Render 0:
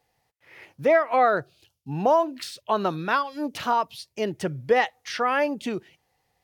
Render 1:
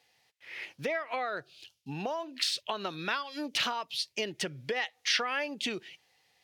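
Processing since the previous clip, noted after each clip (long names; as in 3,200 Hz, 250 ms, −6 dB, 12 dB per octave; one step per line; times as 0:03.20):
downward compressor 6 to 1, threshold −30 dBFS, peak gain reduction 14.5 dB
meter weighting curve D
level −2 dB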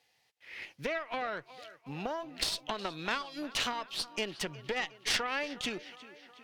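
tape delay 364 ms, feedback 68%, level −16 dB, low-pass 5,100 Hz
harmonic generator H 4 −13 dB, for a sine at −14 dBFS
level −3 dB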